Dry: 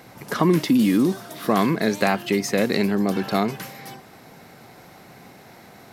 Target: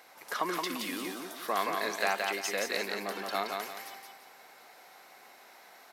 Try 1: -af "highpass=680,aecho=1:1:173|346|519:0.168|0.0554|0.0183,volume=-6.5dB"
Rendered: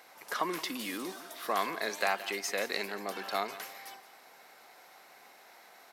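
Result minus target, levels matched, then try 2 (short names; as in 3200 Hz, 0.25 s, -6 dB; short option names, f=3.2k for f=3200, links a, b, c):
echo-to-direct -11.5 dB
-af "highpass=680,aecho=1:1:173|346|519|692:0.631|0.208|0.0687|0.0227,volume=-6.5dB"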